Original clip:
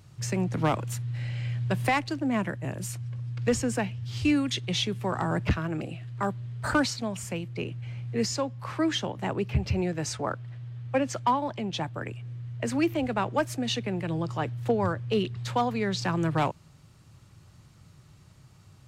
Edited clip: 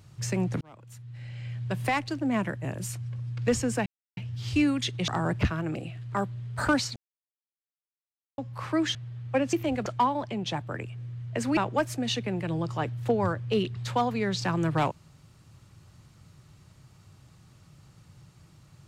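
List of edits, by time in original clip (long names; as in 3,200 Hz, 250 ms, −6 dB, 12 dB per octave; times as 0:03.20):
0:00.61–0:02.26: fade in
0:03.86: splice in silence 0.31 s
0:04.77–0:05.14: remove
0:07.02–0:08.44: silence
0:09.01–0:10.55: remove
0:12.84–0:13.17: move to 0:11.13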